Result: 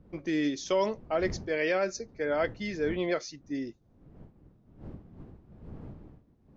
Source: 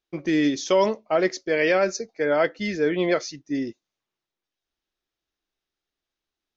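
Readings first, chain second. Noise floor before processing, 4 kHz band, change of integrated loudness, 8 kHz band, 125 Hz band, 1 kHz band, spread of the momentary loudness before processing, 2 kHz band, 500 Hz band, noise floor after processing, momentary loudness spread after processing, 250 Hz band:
under -85 dBFS, -7.5 dB, -7.5 dB, no reading, -4.0 dB, -7.5 dB, 8 LU, -7.5 dB, -7.5 dB, -64 dBFS, 19 LU, -7.5 dB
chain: wind noise 210 Hz -40 dBFS; trim -7.5 dB

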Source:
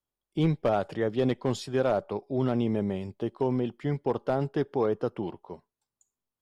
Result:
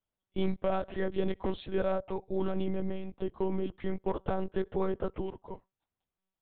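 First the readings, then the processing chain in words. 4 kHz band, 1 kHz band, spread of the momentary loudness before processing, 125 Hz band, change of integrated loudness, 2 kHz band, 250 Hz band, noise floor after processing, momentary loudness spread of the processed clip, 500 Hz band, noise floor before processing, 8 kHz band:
-5.5 dB, -4.5 dB, 9 LU, -8.0 dB, -5.0 dB, -4.0 dB, -5.5 dB, under -85 dBFS, 8 LU, -4.5 dB, under -85 dBFS, no reading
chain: compression 1.5:1, threshold -32 dBFS, peak gain reduction 4.5 dB; monotone LPC vocoder at 8 kHz 190 Hz

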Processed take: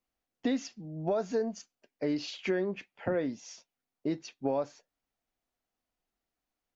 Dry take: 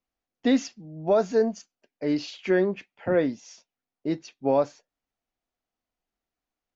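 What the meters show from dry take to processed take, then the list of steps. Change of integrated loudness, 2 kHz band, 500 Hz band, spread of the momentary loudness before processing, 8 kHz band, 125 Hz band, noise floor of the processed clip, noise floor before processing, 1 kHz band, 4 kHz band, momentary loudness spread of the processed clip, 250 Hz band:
-7.5 dB, -6.5 dB, -8.0 dB, 11 LU, no reading, -5.0 dB, under -85 dBFS, under -85 dBFS, -8.0 dB, -4.0 dB, 11 LU, -7.0 dB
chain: compression 4:1, threshold -28 dBFS, peak gain reduction 10 dB; AAC 192 kbps 44.1 kHz

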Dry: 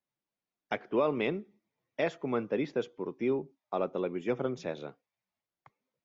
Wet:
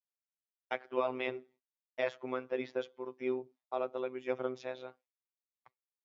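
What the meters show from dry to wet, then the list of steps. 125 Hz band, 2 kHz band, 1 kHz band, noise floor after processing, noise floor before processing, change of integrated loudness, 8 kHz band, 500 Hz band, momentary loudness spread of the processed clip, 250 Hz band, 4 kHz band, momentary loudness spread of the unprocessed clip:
-13.5 dB, -2.5 dB, -3.0 dB, under -85 dBFS, under -85 dBFS, -4.5 dB, no reading, -4.0 dB, 9 LU, -8.5 dB, -3.0 dB, 10 LU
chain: three-band isolator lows -13 dB, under 350 Hz, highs -14 dB, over 6.1 kHz; robot voice 128 Hz; expander -59 dBFS

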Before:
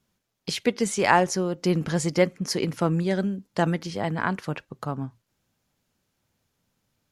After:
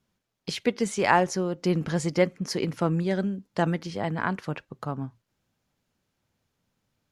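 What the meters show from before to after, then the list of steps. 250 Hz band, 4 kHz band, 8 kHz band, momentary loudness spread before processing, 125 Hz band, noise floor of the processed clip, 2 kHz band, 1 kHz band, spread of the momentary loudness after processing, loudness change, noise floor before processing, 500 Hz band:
-1.5 dB, -3.5 dB, -5.0 dB, 13 LU, -1.5 dB, -79 dBFS, -2.0 dB, -1.5 dB, 13 LU, -1.5 dB, -77 dBFS, -1.5 dB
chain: treble shelf 6.5 kHz -6.5 dB; trim -1.5 dB

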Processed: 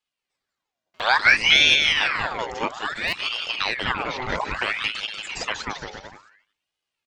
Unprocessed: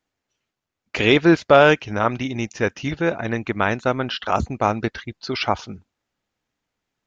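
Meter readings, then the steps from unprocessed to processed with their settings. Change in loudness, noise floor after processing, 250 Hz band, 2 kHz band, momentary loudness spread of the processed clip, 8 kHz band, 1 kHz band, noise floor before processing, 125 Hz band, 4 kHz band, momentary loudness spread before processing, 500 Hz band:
-0.5 dB, under -85 dBFS, -16.5 dB, +4.0 dB, 15 LU, no reading, -4.0 dB, -83 dBFS, -14.0 dB, +8.5 dB, 14 LU, -14.0 dB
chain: speakerphone echo 350 ms, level -29 dB; touch-sensitive flanger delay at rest 2.3 ms, full sweep at -12 dBFS; on a send: bouncing-ball echo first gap 190 ms, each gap 0.8×, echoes 5; on the sum: buffer glitch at 0.94/3.07 s, samples 256, times 9; ring modulator with a swept carrier 1.8 kHz, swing 65%, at 0.59 Hz

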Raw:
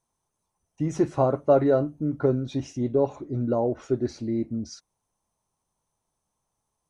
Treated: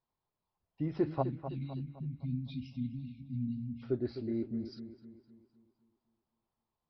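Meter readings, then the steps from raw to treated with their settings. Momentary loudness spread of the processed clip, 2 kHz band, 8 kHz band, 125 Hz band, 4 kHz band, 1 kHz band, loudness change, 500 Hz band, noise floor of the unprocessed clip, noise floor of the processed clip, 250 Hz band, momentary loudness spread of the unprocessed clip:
11 LU, -13.5 dB, no reading, -7.5 dB, -9.0 dB, -14.5 dB, -12.0 dB, -16.5 dB, -81 dBFS, under -85 dBFS, -9.5 dB, 11 LU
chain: spectral selection erased 1.22–3.82 s, 260–2100 Hz; feedback echo behind a low-pass 256 ms, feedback 45%, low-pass 2.5 kHz, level -10 dB; resampled via 11.025 kHz; trim -8 dB

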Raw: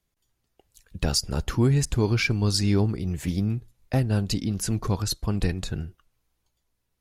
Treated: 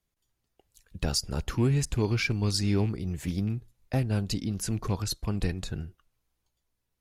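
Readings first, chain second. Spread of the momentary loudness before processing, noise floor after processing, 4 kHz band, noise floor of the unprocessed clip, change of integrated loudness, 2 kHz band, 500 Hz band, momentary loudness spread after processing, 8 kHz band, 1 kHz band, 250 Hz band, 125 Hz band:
9 LU, -81 dBFS, -4.0 dB, -77 dBFS, -4.0 dB, -4.0 dB, -4.0 dB, 9 LU, -4.0 dB, -4.0 dB, -4.0 dB, -4.0 dB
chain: rattle on loud lows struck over -24 dBFS, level -33 dBFS; trim -4 dB

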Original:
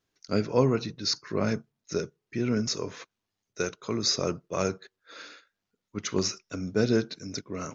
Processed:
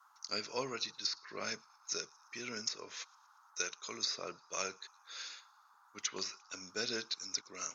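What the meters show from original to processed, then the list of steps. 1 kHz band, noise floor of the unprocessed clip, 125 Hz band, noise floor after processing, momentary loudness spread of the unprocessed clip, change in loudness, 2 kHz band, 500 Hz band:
-8.5 dB, -85 dBFS, -27.0 dB, -66 dBFS, 16 LU, -10.5 dB, -4.5 dB, -16.0 dB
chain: band noise 810–1400 Hz -57 dBFS; differentiator; low-pass that closes with the level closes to 2 kHz, closed at -34.5 dBFS; feedback echo behind a high-pass 116 ms, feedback 59%, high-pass 3.5 kHz, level -24 dB; trim +7.5 dB

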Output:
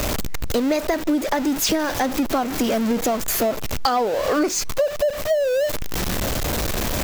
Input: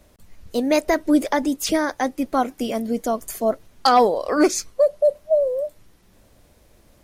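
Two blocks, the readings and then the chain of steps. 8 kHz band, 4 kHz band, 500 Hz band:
+5.0 dB, +4.0 dB, -1.0 dB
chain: jump at every zero crossing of -21 dBFS; peaking EQ 9.6 kHz -10 dB 0.21 oct; compression 6:1, threshold -22 dBFS, peak gain reduction 12 dB; trim +4 dB

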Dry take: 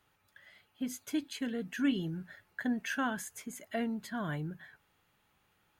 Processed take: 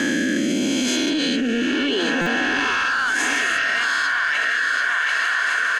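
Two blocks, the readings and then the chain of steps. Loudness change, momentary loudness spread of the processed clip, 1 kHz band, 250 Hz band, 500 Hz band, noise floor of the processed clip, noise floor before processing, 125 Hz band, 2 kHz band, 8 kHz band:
+17.0 dB, 2 LU, +18.5 dB, +12.5 dB, +15.5 dB, -22 dBFS, -73 dBFS, +4.5 dB, +25.0 dB, +18.0 dB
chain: reverse spectral sustain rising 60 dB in 2.37 s; high-pass sweep 66 Hz -> 1.6 kHz, 0.51–3.01 s; feedback delay 738 ms, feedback 32%, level -10.5 dB; overdrive pedal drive 16 dB, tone 5.7 kHz, clips at -14.5 dBFS; distance through air 66 m; thinning echo 579 ms, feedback 71%, high-pass 330 Hz, level -15 dB; rotary cabinet horn 0.9 Hz; dynamic bell 3.8 kHz, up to +4 dB, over -42 dBFS, Q 0.8; band-stop 2 kHz, Q 7.7; buffer glitch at 2.21 s, samples 256, times 8; level flattener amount 100%

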